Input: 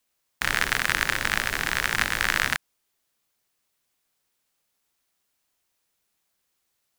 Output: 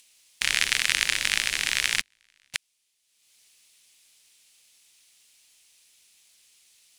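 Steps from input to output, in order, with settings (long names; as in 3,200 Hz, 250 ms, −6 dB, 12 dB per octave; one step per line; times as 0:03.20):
flat-topped bell 4,800 Hz +15.5 dB 2.7 octaves
upward compression, threshold −37 dBFS
0:02.01–0:02.54: noise gate −4 dBFS, range −40 dB
level −10 dB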